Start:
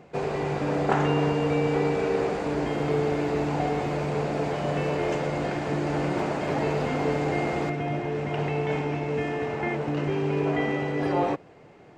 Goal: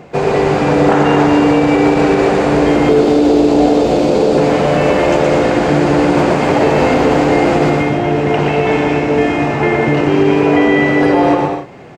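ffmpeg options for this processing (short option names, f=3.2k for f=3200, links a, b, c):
-filter_complex "[0:a]asettb=1/sr,asplit=3[a][b][c];[a]atrim=end=2.894[d];[b]atrim=start=2.89:end=4.38,asetpts=PTS-STARTPTS,afade=t=in:d=0.004:c=qsin,afade=t=out:st=1.486:d=0.004:c=qsin,equalizer=f=125:t=o:w=1:g=-8,equalizer=f=250:t=o:w=1:g=4,equalizer=f=500:t=o:w=1:g=4,equalizer=f=1k:t=o:w=1:g=-4,equalizer=f=2k:t=o:w=1:g=-9,equalizer=f=4k:t=o:w=1:g=5[e];[c]atrim=start=4.376[f];[d][e]acrossfade=d=0.004:c1=hsin:c2=qsin[g];[g][f]acrossfade=d=0.004:c1=qsin:c2=hsin,aecho=1:1:120|198|248.7|281.7|303.1:0.631|0.398|0.251|0.158|0.1,alimiter=level_in=14.5dB:limit=-1dB:release=50:level=0:latency=1,volume=-1dB"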